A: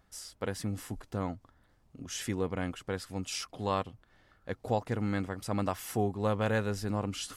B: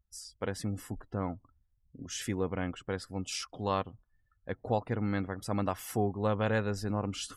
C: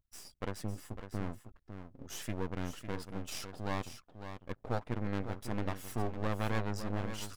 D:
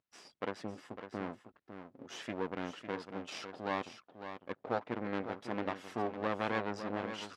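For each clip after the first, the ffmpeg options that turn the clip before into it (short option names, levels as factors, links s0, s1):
-af "afftdn=nr=30:nf=-52"
-af "aeval=exprs='max(val(0),0)':c=same,aecho=1:1:553:0.335,volume=0.891"
-af "highpass=260,lowpass=3700,volume=1.41"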